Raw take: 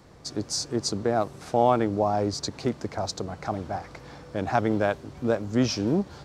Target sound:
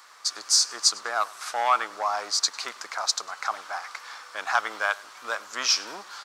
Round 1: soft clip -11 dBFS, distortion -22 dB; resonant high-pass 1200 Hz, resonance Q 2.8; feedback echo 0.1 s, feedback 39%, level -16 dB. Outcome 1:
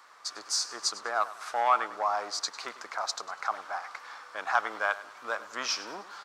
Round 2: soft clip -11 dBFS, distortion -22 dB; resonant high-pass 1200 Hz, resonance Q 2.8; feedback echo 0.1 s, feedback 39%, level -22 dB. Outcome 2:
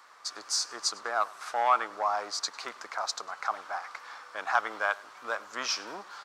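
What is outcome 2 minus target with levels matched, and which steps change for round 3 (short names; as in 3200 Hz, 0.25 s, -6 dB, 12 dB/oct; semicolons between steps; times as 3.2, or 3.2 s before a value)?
4000 Hz band -3.0 dB
add after resonant high-pass: high shelf 2300 Hz +11 dB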